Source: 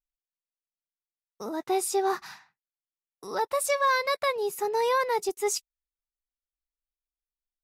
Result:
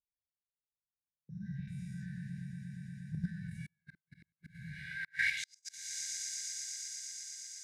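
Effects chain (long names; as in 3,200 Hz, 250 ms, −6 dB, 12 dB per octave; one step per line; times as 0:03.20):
every bin's largest magnitude spread in time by 240 ms
camcorder AGC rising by 6.3 dB per second
linear-phase brick-wall band-stop 180–1,500 Hz
tilt shelving filter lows +9 dB, about 820 Hz
on a send: echo that builds up and dies away 118 ms, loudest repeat 5, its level −11 dB
on the sum: gate with flip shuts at −20 dBFS, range −41 dB
volume swells 271 ms
bass and treble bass +14 dB, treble −1 dB
noise gate −50 dBFS, range −19 dB
band-pass filter sweep 330 Hz → 6,200 Hz, 0:04.71–0:05.59
in parallel at +2.5 dB: output level in coarse steps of 20 dB
on the sum: level +1.5 dB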